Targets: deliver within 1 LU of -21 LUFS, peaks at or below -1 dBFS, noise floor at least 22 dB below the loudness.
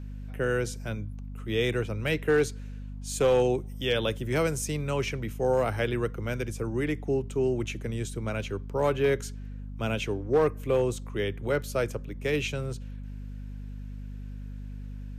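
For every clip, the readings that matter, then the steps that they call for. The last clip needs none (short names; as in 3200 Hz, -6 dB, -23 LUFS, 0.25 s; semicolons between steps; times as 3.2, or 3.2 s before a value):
clipped 0.3%; flat tops at -16.5 dBFS; hum 50 Hz; harmonics up to 250 Hz; hum level -36 dBFS; loudness -29.0 LUFS; peak -16.5 dBFS; loudness target -21.0 LUFS
-> clip repair -16.5 dBFS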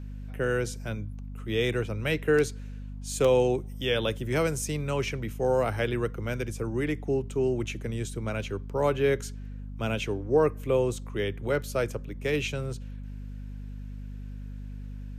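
clipped 0.0%; hum 50 Hz; harmonics up to 250 Hz; hum level -36 dBFS
-> de-hum 50 Hz, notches 5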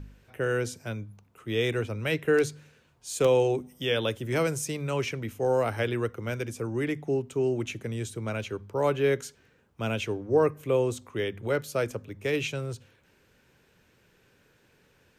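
hum none; loudness -29.0 LUFS; peak -11.0 dBFS; loudness target -21.0 LUFS
-> gain +8 dB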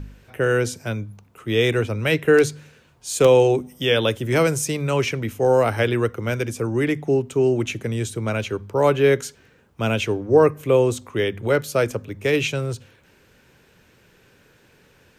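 loudness -21.0 LUFS; peak -3.0 dBFS; noise floor -56 dBFS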